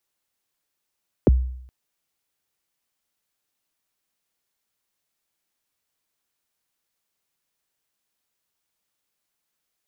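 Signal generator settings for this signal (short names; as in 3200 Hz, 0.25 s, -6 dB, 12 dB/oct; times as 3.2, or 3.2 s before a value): kick drum length 0.42 s, from 570 Hz, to 63 Hz, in 23 ms, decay 0.70 s, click off, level -9 dB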